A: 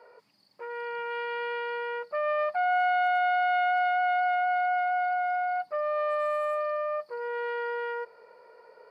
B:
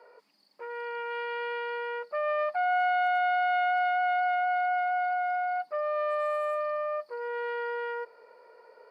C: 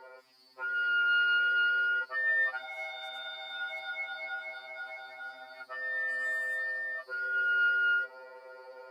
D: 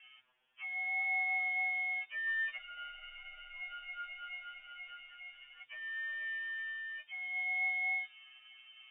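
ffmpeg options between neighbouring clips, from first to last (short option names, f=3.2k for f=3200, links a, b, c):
-af "highpass=f=210:w=0.5412,highpass=f=210:w=1.3066,volume=-1dB"
-af "afftfilt=real='re*2.45*eq(mod(b,6),0)':imag='im*2.45*eq(mod(b,6),0)':win_size=2048:overlap=0.75,volume=8.5dB"
-af "aeval=exprs='if(lt(val(0),0),0.708*val(0),val(0))':c=same,aemphasis=mode=production:type=bsi,lowpass=f=3.1k:t=q:w=0.5098,lowpass=f=3.1k:t=q:w=0.6013,lowpass=f=3.1k:t=q:w=0.9,lowpass=f=3.1k:t=q:w=2.563,afreqshift=-3600,volume=-6.5dB"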